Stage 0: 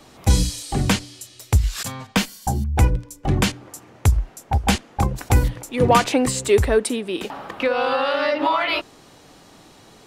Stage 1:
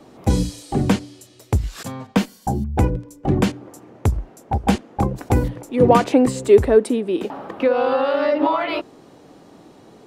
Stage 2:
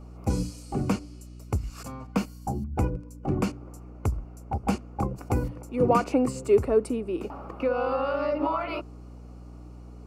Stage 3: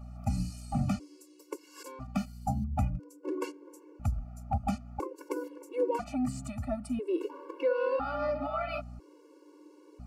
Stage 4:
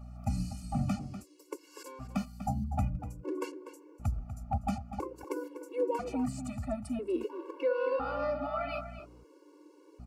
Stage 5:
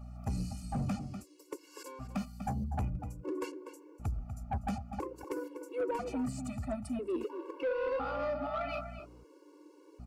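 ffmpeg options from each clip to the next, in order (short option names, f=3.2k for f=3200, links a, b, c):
-af "equalizer=f=330:w=0.33:g=14,volume=-8.5dB"
-af "aeval=exprs='val(0)+0.02*(sin(2*PI*60*n/s)+sin(2*PI*2*60*n/s)/2+sin(2*PI*3*60*n/s)/3+sin(2*PI*4*60*n/s)/4+sin(2*PI*5*60*n/s)/5)':c=same,superequalizer=10b=1.58:11b=0.447:13b=0.316,volume=-8.5dB"
-af "alimiter=limit=-18dB:level=0:latency=1:release=295,afftfilt=real='re*gt(sin(2*PI*0.5*pts/sr)*(1-2*mod(floor(b*sr/1024/290),2)),0)':imag='im*gt(sin(2*PI*0.5*pts/sr)*(1-2*mod(floor(b*sr/1024/290),2)),0)':win_size=1024:overlap=0.75"
-filter_complex "[0:a]asplit=2[a][b];[b]adelay=244.9,volume=-11dB,highshelf=f=4k:g=-5.51[c];[a][c]amix=inputs=2:normalize=0,volume=-1.5dB"
-af "asoftclip=type=tanh:threshold=-27.5dB"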